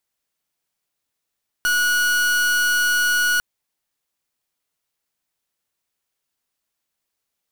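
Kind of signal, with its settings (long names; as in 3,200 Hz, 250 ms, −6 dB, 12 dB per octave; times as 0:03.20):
pulse wave 1,460 Hz, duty 41% −18.5 dBFS 1.75 s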